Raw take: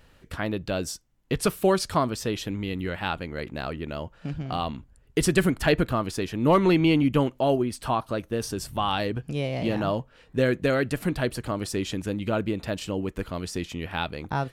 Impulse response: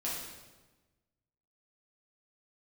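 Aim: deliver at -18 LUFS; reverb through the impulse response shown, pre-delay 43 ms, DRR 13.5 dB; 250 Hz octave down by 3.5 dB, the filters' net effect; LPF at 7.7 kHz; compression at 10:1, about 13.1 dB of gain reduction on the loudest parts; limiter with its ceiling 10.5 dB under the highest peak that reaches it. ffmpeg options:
-filter_complex "[0:a]lowpass=7700,equalizer=f=250:t=o:g=-5,acompressor=threshold=0.0282:ratio=10,alimiter=level_in=1.68:limit=0.0631:level=0:latency=1,volume=0.596,asplit=2[s0][s1];[1:a]atrim=start_sample=2205,adelay=43[s2];[s1][s2]afir=irnorm=-1:irlink=0,volume=0.141[s3];[s0][s3]amix=inputs=2:normalize=0,volume=11.2"

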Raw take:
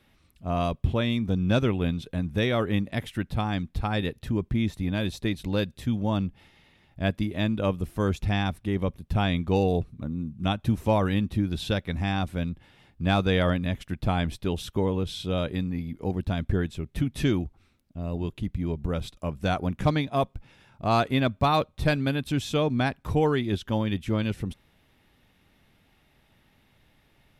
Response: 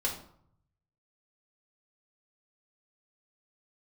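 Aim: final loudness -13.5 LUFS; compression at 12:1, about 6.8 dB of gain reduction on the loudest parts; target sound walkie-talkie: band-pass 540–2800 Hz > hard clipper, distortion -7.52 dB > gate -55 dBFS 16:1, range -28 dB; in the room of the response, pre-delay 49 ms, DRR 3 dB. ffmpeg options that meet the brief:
-filter_complex "[0:a]acompressor=threshold=0.0562:ratio=12,asplit=2[s0][s1];[1:a]atrim=start_sample=2205,adelay=49[s2];[s1][s2]afir=irnorm=-1:irlink=0,volume=0.376[s3];[s0][s3]amix=inputs=2:normalize=0,highpass=540,lowpass=2800,asoftclip=type=hard:threshold=0.0178,agate=range=0.0398:threshold=0.00178:ratio=16,volume=22.4"

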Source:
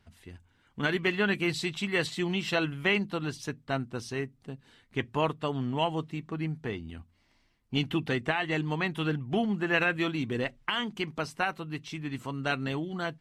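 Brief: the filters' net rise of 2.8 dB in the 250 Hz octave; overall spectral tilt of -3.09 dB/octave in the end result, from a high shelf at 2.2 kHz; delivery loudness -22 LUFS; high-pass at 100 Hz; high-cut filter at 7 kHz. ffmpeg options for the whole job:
-af "highpass=100,lowpass=7000,equalizer=f=250:t=o:g=4,highshelf=f=2200:g=8,volume=2"

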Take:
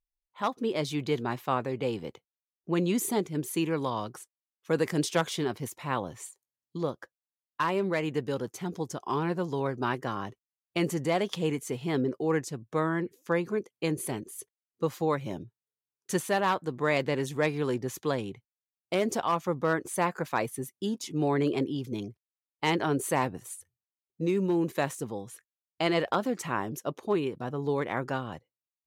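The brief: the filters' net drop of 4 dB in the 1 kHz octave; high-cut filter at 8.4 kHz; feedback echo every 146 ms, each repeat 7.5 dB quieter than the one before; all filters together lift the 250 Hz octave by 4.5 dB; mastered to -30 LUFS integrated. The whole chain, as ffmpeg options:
-af "lowpass=8400,equalizer=f=250:t=o:g=6.5,equalizer=f=1000:t=o:g=-5.5,aecho=1:1:146|292|438|584|730:0.422|0.177|0.0744|0.0312|0.0131,volume=0.794"

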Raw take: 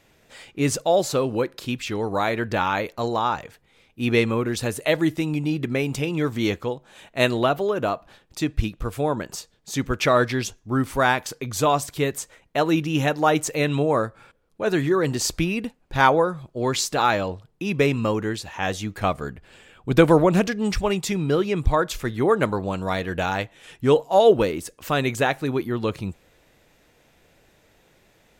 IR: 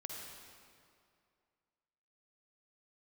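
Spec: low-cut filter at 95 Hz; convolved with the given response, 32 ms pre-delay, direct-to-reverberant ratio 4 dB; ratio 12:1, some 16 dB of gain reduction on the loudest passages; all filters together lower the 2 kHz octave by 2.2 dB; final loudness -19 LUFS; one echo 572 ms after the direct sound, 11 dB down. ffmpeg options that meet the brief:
-filter_complex "[0:a]highpass=95,equalizer=f=2000:t=o:g=-3,acompressor=threshold=0.0501:ratio=12,aecho=1:1:572:0.282,asplit=2[s0][s1];[1:a]atrim=start_sample=2205,adelay=32[s2];[s1][s2]afir=irnorm=-1:irlink=0,volume=0.75[s3];[s0][s3]amix=inputs=2:normalize=0,volume=3.55"

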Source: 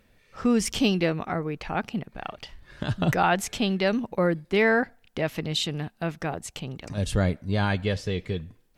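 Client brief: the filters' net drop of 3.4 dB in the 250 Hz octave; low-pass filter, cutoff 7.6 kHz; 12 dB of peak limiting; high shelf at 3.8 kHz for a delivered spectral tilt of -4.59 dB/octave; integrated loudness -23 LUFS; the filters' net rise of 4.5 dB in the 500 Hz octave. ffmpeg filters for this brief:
-af "lowpass=7600,equalizer=f=250:t=o:g=-6.5,equalizer=f=500:t=o:g=7,highshelf=f=3800:g=5,volume=2.11,alimiter=limit=0.266:level=0:latency=1"

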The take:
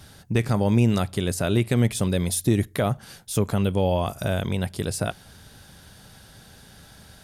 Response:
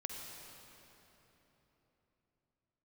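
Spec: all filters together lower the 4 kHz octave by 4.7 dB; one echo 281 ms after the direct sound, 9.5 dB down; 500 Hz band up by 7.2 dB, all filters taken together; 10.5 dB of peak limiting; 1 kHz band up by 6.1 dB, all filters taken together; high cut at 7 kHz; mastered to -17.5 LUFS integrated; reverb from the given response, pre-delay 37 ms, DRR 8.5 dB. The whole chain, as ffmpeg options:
-filter_complex "[0:a]lowpass=7000,equalizer=f=500:t=o:g=7.5,equalizer=f=1000:t=o:g=5.5,equalizer=f=4000:t=o:g=-6,alimiter=limit=0.15:level=0:latency=1,aecho=1:1:281:0.335,asplit=2[s0][s1];[1:a]atrim=start_sample=2205,adelay=37[s2];[s1][s2]afir=irnorm=-1:irlink=0,volume=0.398[s3];[s0][s3]amix=inputs=2:normalize=0,volume=2.82"

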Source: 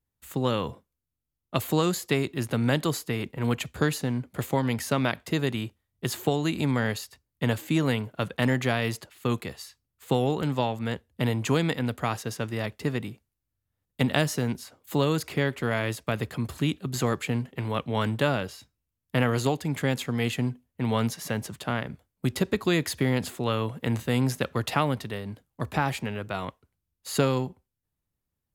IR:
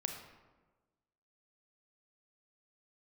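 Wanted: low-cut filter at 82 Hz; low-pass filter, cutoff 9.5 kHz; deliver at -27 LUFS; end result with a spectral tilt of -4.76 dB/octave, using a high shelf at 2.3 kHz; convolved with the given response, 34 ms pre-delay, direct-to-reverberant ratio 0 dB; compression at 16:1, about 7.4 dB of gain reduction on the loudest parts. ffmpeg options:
-filter_complex "[0:a]highpass=82,lowpass=9500,highshelf=f=2300:g=5,acompressor=threshold=0.0562:ratio=16,asplit=2[s0][s1];[1:a]atrim=start_sample=2205,adelay=34[s2];[s1][s2]afir=irnorm=-1:irlink=0,volume=0.944[s3];[s0][s3]amix=inputs=2:normalize=0,volume=1.26"

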